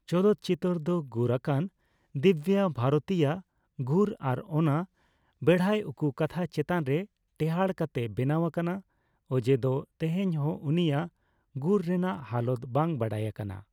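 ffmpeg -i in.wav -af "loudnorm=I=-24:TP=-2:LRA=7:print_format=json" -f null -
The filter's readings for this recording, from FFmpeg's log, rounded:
"input_i" : "-29.2",
"input_tp" : "-10.8",
"input_lra" : "2.5",
"input_thresh" : "-39.5",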